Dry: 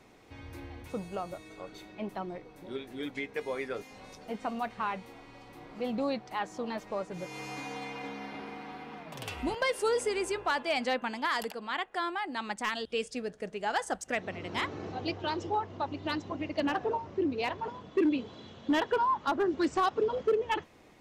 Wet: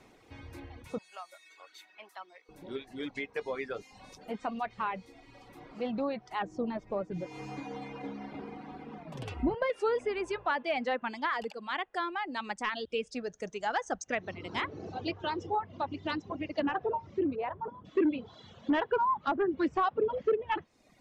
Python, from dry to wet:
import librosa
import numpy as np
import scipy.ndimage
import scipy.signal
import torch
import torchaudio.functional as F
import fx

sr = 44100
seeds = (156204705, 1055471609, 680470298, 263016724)

y = fx.highpass(x, sr, hz=1200.0, slope=12, at=(0.98, 2.49))
y = fx.tilt_shelf(y, sr, db=6.5, hz=720.0, at=(6.42, 9.7))
y = fx.peak_eq(y, sr, hz=6300.0, db=14.0, octaves=0.47, at=(13.24, 14.34))
y = fx.lowpass(y, sr, hz=1300.0, slope=12, at=(17.35, 17.84), fade=0.02)
y = fx.env_lowpass_down(y, sr, base_hz=2500.0, full_db=-26.5)
y = fx.dereverb_blind(y, sr, rt60_s=0.86)